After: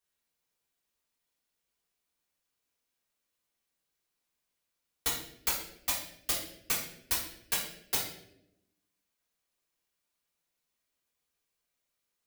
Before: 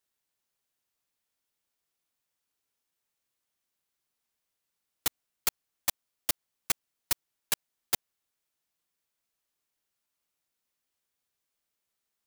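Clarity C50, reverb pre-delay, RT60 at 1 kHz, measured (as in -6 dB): 4.5 dB, 3 ms, 0.60 s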